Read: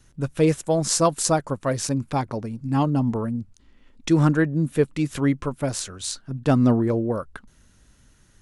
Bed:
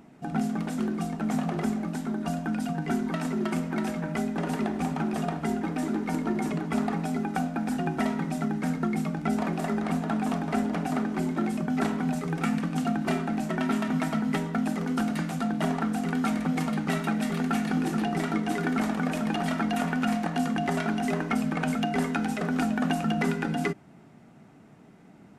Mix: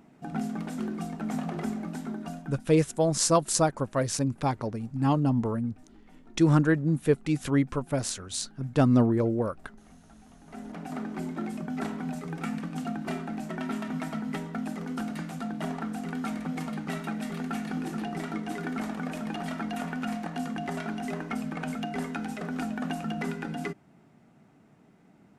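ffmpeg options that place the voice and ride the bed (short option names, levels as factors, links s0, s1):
-filter_complex "[0:a]adelay=2300,volume=0.708[s0];[1:a]volume=7.5,afade=t=out:st=2.07:d=0.61:silence=0.0668344,afade=t=in:st=10.39:d=0.69:silence=0.0841395[s1];[s0][s1]amix=inputs=2:normalize=0"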